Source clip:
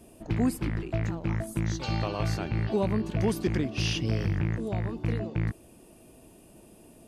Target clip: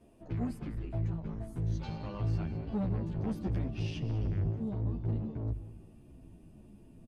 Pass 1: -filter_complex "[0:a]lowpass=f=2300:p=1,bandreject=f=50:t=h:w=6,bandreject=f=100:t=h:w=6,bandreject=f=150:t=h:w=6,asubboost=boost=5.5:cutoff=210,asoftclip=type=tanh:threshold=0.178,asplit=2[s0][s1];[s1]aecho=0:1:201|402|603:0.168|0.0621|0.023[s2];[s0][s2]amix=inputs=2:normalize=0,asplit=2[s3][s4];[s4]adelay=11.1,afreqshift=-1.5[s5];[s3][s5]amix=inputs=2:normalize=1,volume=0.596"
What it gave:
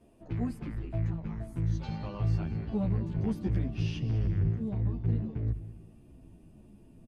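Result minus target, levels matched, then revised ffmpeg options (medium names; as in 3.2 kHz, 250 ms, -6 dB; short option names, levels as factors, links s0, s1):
saturation: distortion -6 dB
-filter_complex "[0:a]lowpass=f=2300:p=1,bandreject=f=50:t=h:w=6,bandreject=f=100:t=h:w=6,bandreject=f=150:t=h:w=6,asubboost=boost=5.5:cutoff=210,asoftclip=type=tanh:threshold=0.0841,asplit=2[s0][s1];[s1]aecho=0:1:201|402|603:0.168|0.0621|0.023[s2];[s0][s2]amix=inputs=2:normalize=0,asplit=2[s3][s4];[s4]adelay=11.1,afreqshift=-1.5[s5];[s3][s5]amix=inputs=2:normalize=1,volume=0.596"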